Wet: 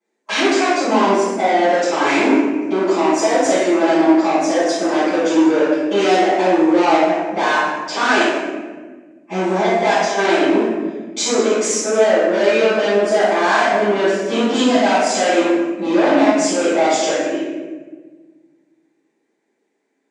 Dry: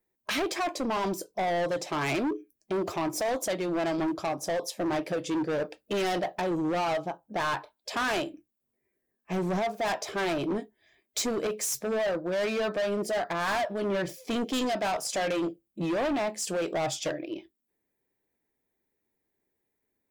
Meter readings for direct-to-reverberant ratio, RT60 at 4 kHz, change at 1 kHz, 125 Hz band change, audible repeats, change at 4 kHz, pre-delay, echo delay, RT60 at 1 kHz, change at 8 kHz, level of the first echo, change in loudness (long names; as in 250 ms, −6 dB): −16.0 dB, 0.85 s, +14.5 dB, +4.5 dB, no echo audible, +12.0 dB, 5 ms, no echo audible, 1.2 s, +11.5 dB, no echo audible, +14.0 dB